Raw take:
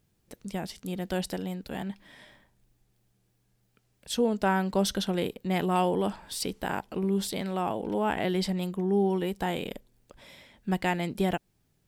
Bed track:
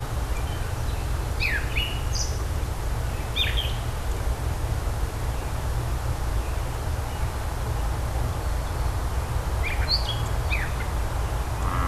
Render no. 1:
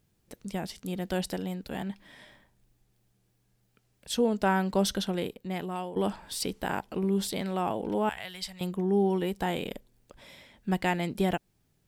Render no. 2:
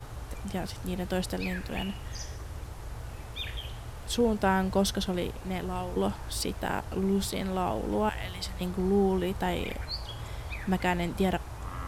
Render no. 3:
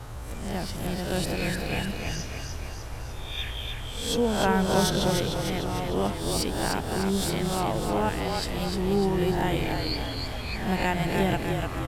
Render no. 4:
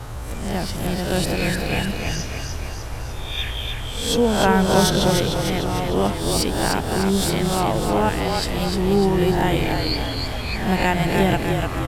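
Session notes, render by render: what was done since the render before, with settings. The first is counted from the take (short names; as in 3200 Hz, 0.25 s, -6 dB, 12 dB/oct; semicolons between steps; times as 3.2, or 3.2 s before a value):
4.85–5.96 fade out, to -14 dB; 8.09–8.61 passive tone stack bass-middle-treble 10-0-10
add bed track -12.5 dB
spectral swells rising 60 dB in 0.65 s; frequency-shifting echo 0.3 s, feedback 57%, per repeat -31 Hz, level -4 dB
gain +6.5 dB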